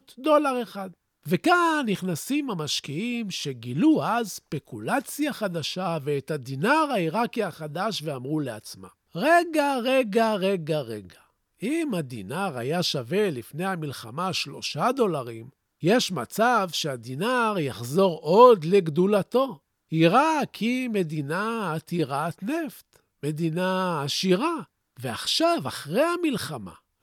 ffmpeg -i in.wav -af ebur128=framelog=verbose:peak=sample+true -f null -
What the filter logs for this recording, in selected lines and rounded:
Integrated loudness:
  I:         -24.9 LUFS
  Threshold: -35.2 LUFS
Loudness range:
  LRA:         6.7 LU
  Threshold: -45.2 LUFS
  LRA low:   -28.0 LUFS
  LRA high:  -21.3 LUFS
Sample peak:
  Peak:       -3.1 dBFS
True peak:
  Peak:       -3.1 dBFS